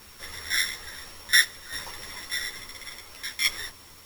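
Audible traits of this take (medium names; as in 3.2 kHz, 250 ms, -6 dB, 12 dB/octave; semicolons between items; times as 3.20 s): a buzz of ramps at a fixed pitch in blocks of 8 samples; tremolo saw down 0.58 Hz, depth 60%; a quantiser's noise floor 10-bit, dither triangular; a shimmering, thickened sound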